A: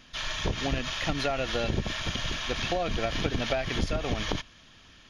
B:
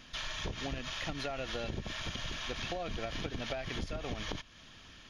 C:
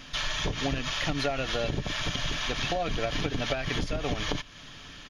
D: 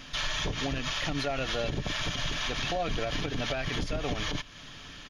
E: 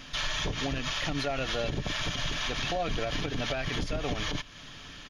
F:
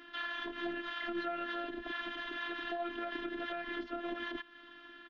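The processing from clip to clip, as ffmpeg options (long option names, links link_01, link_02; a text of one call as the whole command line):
ffmpeg -i in.wav -af "acompressor=threshold=-39dB:ratio=2.5" out.wav
ffmpeg -i in.wav -af "aecho=1:1:6.9:0.35,volume=8dB" out.wav
ffmpeg -i in.wav -af "alimiter=limit=-21.5dB:level=0:latency=1:release=27" out.wav
ffmpeg -i in.wav -af anull out.wav
ffmpeg -i in.wav -af "highpass=frequency=180:width=0.5412,highpass=frequency=180:width=1.3066,equalizer=frequency=190:width_type=q:width=4:gain=7,equalizer=frequency=430:width_type=q:width=4:gain=-6,equalizer=frequency=670:width_type=q:width=4:gain=-6,equalizer=frequency=1000:width_type=q:width=4:gain=-4,equalizer=frequency=1600:width_type=q:width=4:gain=4,equalizer=frequency=2400:width_type=q:width=4:gain=-10,lowpass=frequency=2800:width=0.5412,lowpass=frequency=2800:width=1.3066,afftfilt=real='hypot(re,im)*cos(PI*b)':imag='0':win_size=512:overlap=0.75" out.wav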